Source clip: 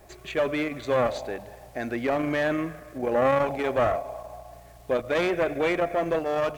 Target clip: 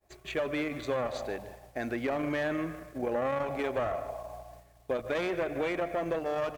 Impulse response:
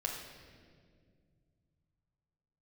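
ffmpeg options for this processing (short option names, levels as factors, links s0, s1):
-filter_complex "[0:a]asplit=2[s0][s1];[s1]adelay=151.6,volume=0.158,highshelf=f=4000:g=-3.41[s2];[s0][s2]amix=inputs=2:normalize=0,acompressor=threshold=0.0562:ratio=6,agate=range=0.0224:threshold=0.00891:ratio=3:detection=peak,volume=0.75"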